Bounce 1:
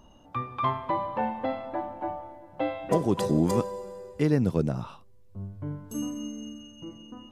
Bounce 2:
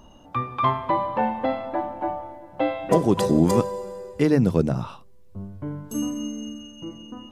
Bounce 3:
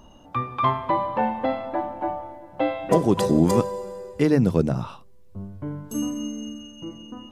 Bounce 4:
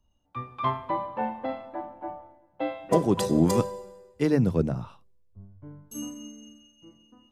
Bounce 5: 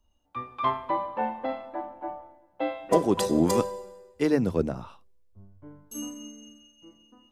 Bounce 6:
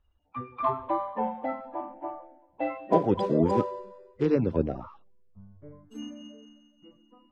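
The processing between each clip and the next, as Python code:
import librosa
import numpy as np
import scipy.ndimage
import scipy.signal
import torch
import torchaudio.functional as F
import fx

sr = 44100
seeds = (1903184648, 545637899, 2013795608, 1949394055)

y1 = fx.hum_notches(x, sr, base_hz=50, count=3)
y1 = y1 * 10.0 ** (5.5 / 20.0)
y2 = y1
y3 = fx.band_widen(y2, sr, depth_pct=70)
y3 = y3 * 10.0 ** (-6.0 / 20.0)
y4 = fx.peak_eq(y3, sr, hz=130.0, db=-10.0, octaves=1.1)
y4 = y4 * 10.0 ** (1.5 / 20.0)
y5 = fx.spec_quant(y4, sr, step_db=30)
y5 = scipy.signal.sosfilt(scipy.signal.butter(2, 2200.0, 'lowpass', fs=sr, output='sos'), y5)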